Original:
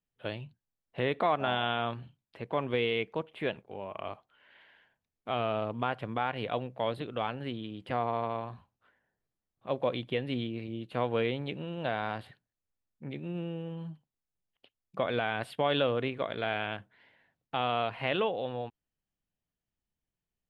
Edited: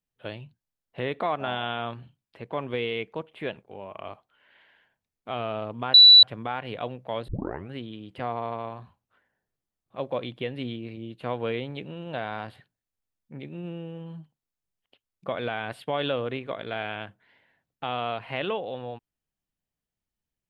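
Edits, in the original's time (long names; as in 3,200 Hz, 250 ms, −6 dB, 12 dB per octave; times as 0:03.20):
0:05.94: insert tone 3,950 Hz −8 dBFS 0.29 s
0:06.99: tape start 0.45 s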